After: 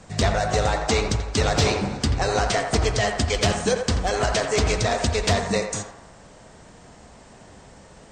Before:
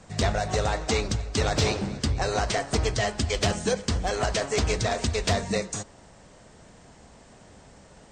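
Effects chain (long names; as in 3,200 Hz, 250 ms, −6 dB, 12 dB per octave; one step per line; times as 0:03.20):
feedback echo with a band-pass in the loop 85 ms, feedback 60%, band-pass 1,000 Hz, level −5 dB
level +3.5 dB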